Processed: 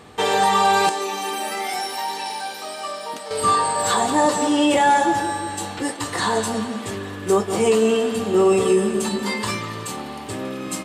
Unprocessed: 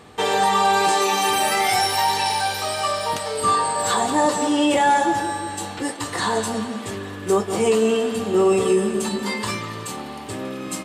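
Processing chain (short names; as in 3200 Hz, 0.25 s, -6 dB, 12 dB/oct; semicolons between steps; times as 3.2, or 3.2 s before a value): 0.89–3.31 ladder high-pass 200 Hz, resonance 40%; gain +1 dB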